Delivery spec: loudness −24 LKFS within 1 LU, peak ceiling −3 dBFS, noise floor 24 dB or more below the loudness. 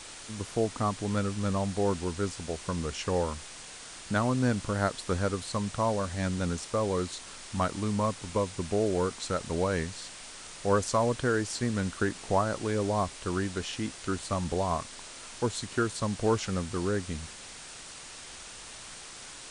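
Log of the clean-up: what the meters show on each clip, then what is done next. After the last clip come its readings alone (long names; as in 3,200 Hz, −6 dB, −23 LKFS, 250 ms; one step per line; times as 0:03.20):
background noise floor −46 dBFS; target noise floor −55 dBFS; integrated loudness −30.5 LKFS; sample peak −13.0 dBFS; target loudness −24.0 LKFS
→ noise reduction from a noise print 9 dB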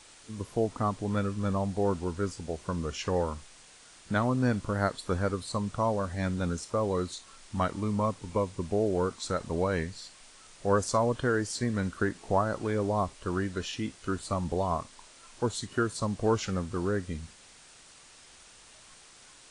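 background noise floor −54 dBFS; target noise floor −55 dBFS
→ noise reduction from a noise print 6 dB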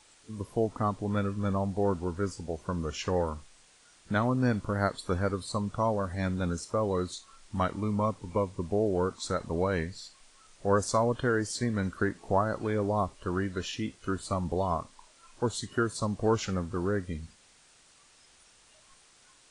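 background noise floor −60 dBFS; integrated loudness −31.0 LKFS; sample peak −13.5 dBFS; target loudness −24.0 LKFS
→ level +7 dB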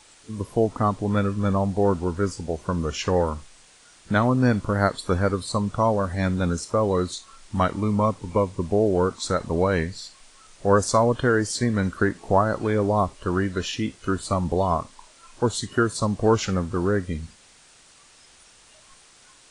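integrated loudness −24.0 LKFS; sample peak −6.5 dBFS; background noise floor −53 dBFS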